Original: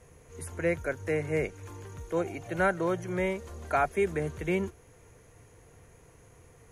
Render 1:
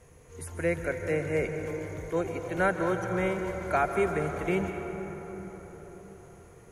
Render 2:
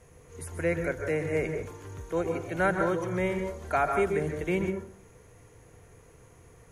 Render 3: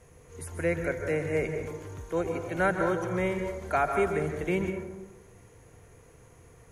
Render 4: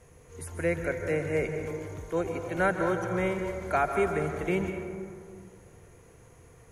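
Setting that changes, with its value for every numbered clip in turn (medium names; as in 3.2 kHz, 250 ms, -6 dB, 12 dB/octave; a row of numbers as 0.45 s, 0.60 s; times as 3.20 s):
plate-style reverb, RT60: 5.1 s, 0.5 s, 1.1 s, 2.3 s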